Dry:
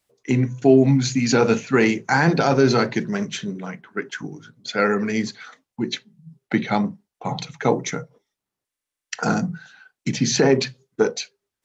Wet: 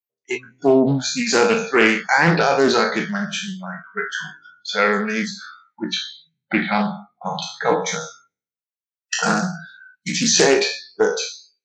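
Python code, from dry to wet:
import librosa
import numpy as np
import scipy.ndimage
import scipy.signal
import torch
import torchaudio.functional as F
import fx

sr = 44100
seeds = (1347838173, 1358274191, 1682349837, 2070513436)

y = fx.spec_trails(x, sr, decay_s=0.62)
y = fx.high_shelf(y, sr, hz=4300.0, db=7.0, at=(8.01, 10.61))
y = fx.noise_reduce_blind(y, sr, reduce_db=30)
y = fx.peak_eq(y, sr, hz=2200.0, db=5.0, octaves=0.97)
y = fx.doppler_dist(y, sr, depth_ms=0.29)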